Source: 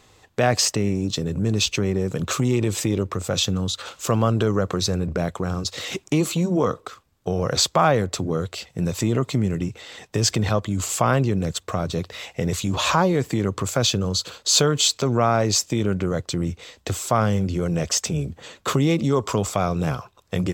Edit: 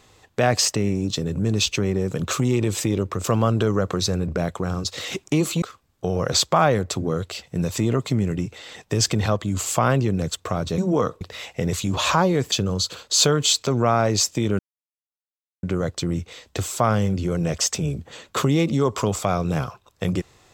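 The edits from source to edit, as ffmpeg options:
ffmpeg -i in.wav -filter_complex "[0:a]asplit=7[link_01][link_02][link_03][link_04][link_05][link_06][link_07];[link_01]atrim=end=3.242[link_08];[link_02]atrim=start=4.038:end=6.422[link_09];[link_03]atrim=start=6.848:end=12.012[link_10];[link_04]atrim=start=6.418:end=6.852[link_11];[link_05]atrim=start=12.008:end=13.322[link_12];[link_06]atrim=start=13.868:end=15.94,asetpts=PTS-STARTPTS,afade=type=out:start_time=2.068:duration=0.004:curve=hsin,apad=pad_dur=1.04[link_13];[link_07]atrim=start=15.94,asetpts=PTS-STARTPTS,afade=type=in:duration=0.004:curve=hsin[link_14];[link_08][link_09]acrossfade=duration=0.004:curve1=hsin:curve2=hsin[link_15];[link_15][link_10]acrossfade=duration=0.004:curve1=hsin:curve2=hsin[link_16];[link_16][link_11]acrossfade=duration=0.004:curve1=hsin:curve2=hsin[link_17];[link_17][link_12]acrossfade=duration=0.004:curve1=hsin:curve2=hsin[link_18];[link_13][link_14]concat=n=2:v=0:a=1[link_19];[link_18][link_19]acrossfade=duration=0.004:curve1=hsin:curve2=hsin" out.wav

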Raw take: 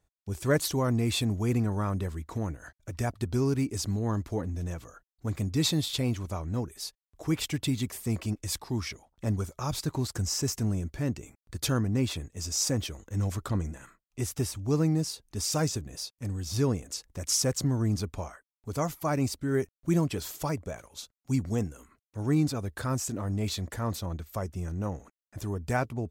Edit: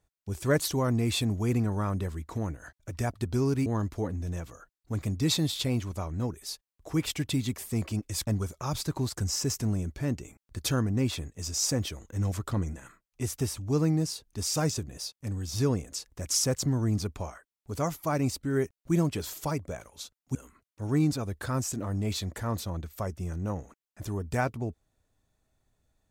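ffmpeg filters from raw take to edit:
ffmpeg -i in.wav -filter_complex "[0:a]asplit=4[link_01][link_02][link_03][link_04];[link_01]atrim=end=3.662[link_05];[link_02]atrim=start=3.998:end=8.612[link_06];[link_03]atrim=start=9.248:end=21.332[link_07];[link_04]atrim=start=21.708[link_08];[link_05][link_06]acrossfade=duration=0.004:curve1=hsin:curve2=hsin[link_09];[link_09][link_07]acrossfade=duration=0.004:curve1=hsin:curve2=hsin[link_10];[link_10][link_08]acrossfade=duration=0.004:curve1=hsin:curve2=hsin" out.wav

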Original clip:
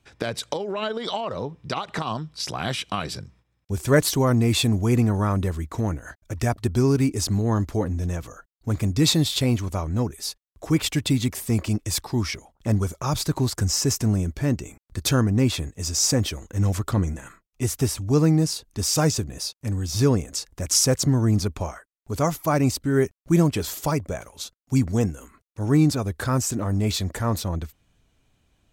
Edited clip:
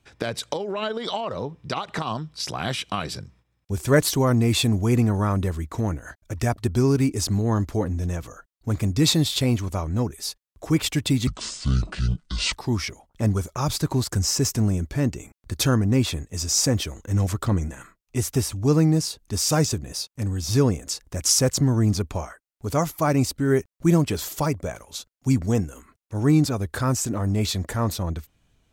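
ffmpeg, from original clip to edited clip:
ffmpeg -i in.wav -filter_complex "[0:a]asplit=3[link_01][link_02][link_03];[link_01]atrim=end=11.274[link_04];[link_02]atrim=start=11.27:end=11.99,asetpts=PTS-STARTPTS,asetrate=25137,aresample=44100,atrim=end_sample=55705,asetpts=PTS-STARTPTS[link_05];[link_03]atrim=start=11.986[link_06];[link_04][link_05]acrossfade=duration=0.004:curve1=hsin:curve2=hsin[link_07];[link_07][link_06]acrossfade=duration=0.004:curve1=hsin:curve2=hsin" out.wav

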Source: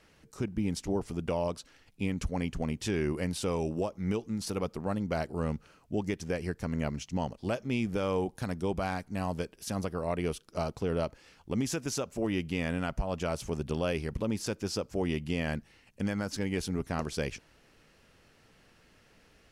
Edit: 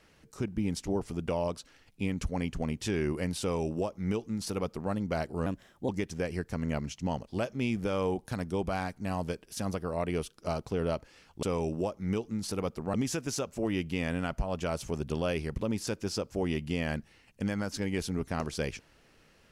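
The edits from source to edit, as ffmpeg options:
ffmpeg -i in.wav -filter_complex "[0:a]asplit=5[link_01][link_02][link_03][link_04][link_05];[link_01]atrim=end=5.464[link_06];[link_02]atrim=start=5.46:end=5.99,asetpts=PTS-STARTPTS,asetrate=54684,aresample=44100,atrim=end_sample=18849,asetpts=PTS-STARTPTS[link_07];[link_03]atrim=start=5.986:end=11.532[link_08];[link_04]atrim=start=3.408:end=4.922[link_09];[link_05]atrim=start=11.528[link_10];[link_06][link_07]acrossfade=duration=0.004:curve1=hsin:curve2=hsin[link_11];[link_11][link_08]acrossfade=duration=0.004:curve1=hsin:curve2=hsin[link_12];[link_12][link_09]acrossfade=duration=0.004:curve1=hsin:curve2=hsin[link_13];[link_13][link_10]acrossfade=duration=0.004:curve1=hsin:curve2=hsin" out.wav

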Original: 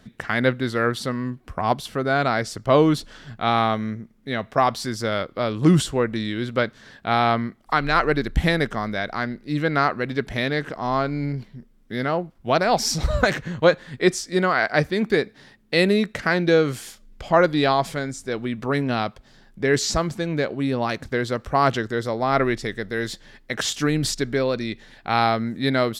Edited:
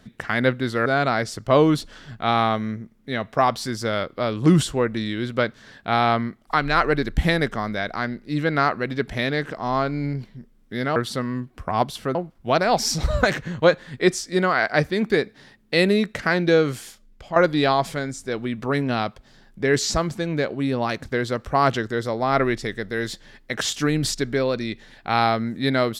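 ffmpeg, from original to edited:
ffmpeg -i in.wav -filter_complex "[0:a]asplit=5[link_01][link_02][link_03][link_04][link_05];[link_01]atrim=end=0.862[link_06];[link_02]atrim=start=2.048:end=12.152[link_07];[link_03]atrim=start=0.858:end=2.052[link_08];[link_04]atrim=start=12.148:end=17.36,asetpts=PTS-STARTPTS,afade=type=out:start_time=4.522:duration=0.69:silence=0.316228[link_09];[link_05]atrim=start=17.36,asetpts=PTS-STARTPTS,afade=type=in:duration=0.004:curve=hsin:silence=0.316228[link_10];[link_06][link_07]acrossfade=duration=0.004:curve1=hsin:curve2=hsin[link_11];[link_11][link_08]acrossfade=duration=0.004:curve1=hsin:curve2=hsin[link_12];[link_09][link_10]concat=n=2:v=0:a=1[link_13];[link_12][link_13]acrossfade=duration=0.004:curve1=hsin:curve2=hsin" out.wav

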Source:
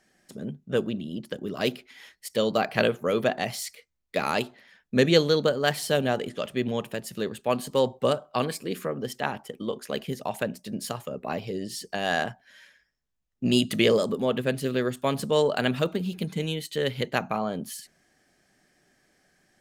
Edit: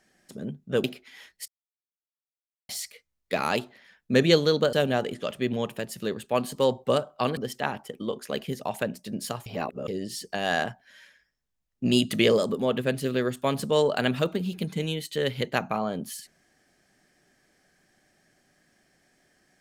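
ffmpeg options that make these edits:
ffmpeg -i in.wav -filter_complex "[0:a]asplit=8[link_01][link_02][link_03][link_04][link_05][link_06][link_07][link_08];[link_01]atrim=end=0.842[link_09];[link_02]atrim=start=1.668:end=2.31,asetpts=PTS-STARTPTS,afade=type=out:start_time=0.638:duration=0.004:curve=hsin[link_10];[link_03]atrim=start=2.31:end=3.52,asetpts=PTS-STARTPTS,volume=0[link_11];[link_04]atrim=start=3.52:end=5.562,asetpts=PTS-STARTPTS,afade=type=in:duration=0.004:curve=hsin[link_12];[link_05]atrim=start=5.878:end=8.522[link_13];[link_06]atrim=start=8.968:end=11.062[link_14];[link_07]atrim=start=11.058:end=11.482,asetpts=PTS-STARTPTS,areverse[link_15];[link_08]atrim=start=11.478[link_16];[link_10][link_11][link_12]concat=n=3:v=0:a=1[link_17];[link_09][link_17]acrossfade=duration=0.004:curve1=hsin:curve2=hsin[link_18];[link_18][link_13]acrossfade=duration=0.004:curve1=hsin:curve2=hsin[link_19];[link_19][link_14]acrossfade=duration=0.004:curve1=hsin:curve2=hsin[link_20];[link_20][link_15]acrossfade=duration=0.004:curve1=hsin:curve2=hsin[link_21];[link_21][link_16]acrossfade=duration=0.004:curve1=hsin:curve2=hsin" out.wav

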